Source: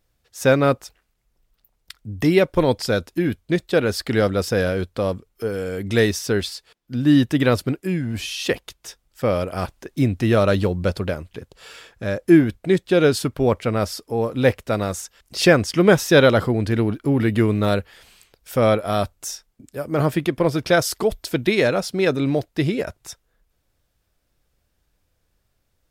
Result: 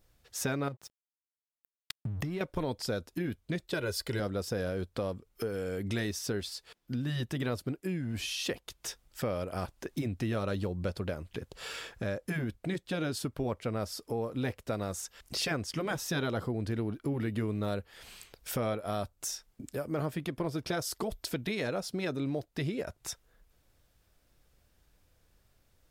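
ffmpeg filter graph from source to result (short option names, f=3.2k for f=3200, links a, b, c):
-filter_complex "[0:a]asettb=1/sr,asplit=3[a][b][c];[a]atrim=end=0.684[d];[b]atrim=start=0.68:end=2.41,asetpts=PTS-STARTPTS,afade=t=in:d=0.004:c=qsin,afade=t=out:st=1.726:d=0.004:c=qsin,equalizer=f=130:w=1.4:g=14.5,acompressor=threshold=-24dB:ratio=6:attack=3.2:release=140:knee=1:detection=peak,aeval=exprs='sgn(val(0))*max(abs(val(0))-0.00596,0)':c=same[e];[c]atrim=start=2.406[f];[d][e]acrossfade=d=0.004:c1=hsin:c2=qsin[g];[g][f]acrossfade=d=0.004:c1=qsin:c2=hsin,asettb=1/sr,asplit=3[h][i][j];[h]atrim=end=3.734[k];[i]atrim=start=3.73:end=4.2,asetpts=PTS-STARTPTS,afade=t=in:d=0.004:c=qsin,afade=t=out:st=0.466:d=0.004:c=qsin,highshelf=f=4.9k:g=5.5,aecho=1:1:2:0.63,atrim=end_sample=20727[l];[j]atrim=start=4.196[m];[k][l]acrossfade=d=0.004:c1=hsin:c2=qsin[n];[n][m]acrossfade=d=0.004:c1=qsin:c2=hsin,afftfilt=real='re*lt(hypot(re,im),1.41)':imag='im*lt(hypot(re,im),1.41)':win_size=1024:overlap=0.75,adynamicequalizer=threshold=0.0126:dfrequency=2200:dqfactor=1:tfrequency=2200:tqfactor=1:attack=5:release=100:ratio=0.375:range=2.5:mode=cutabove:tftype=bell,acompressor=threshold=-37dB:ratio=3,volume=1.5dB"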